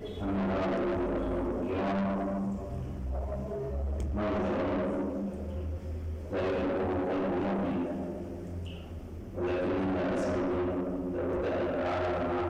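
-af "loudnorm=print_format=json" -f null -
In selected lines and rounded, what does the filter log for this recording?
"input_i" : "-32.1",
"input_tp" : "-27.6",
"input_lra" : "2.1",
"input_thresh" : "-42.2",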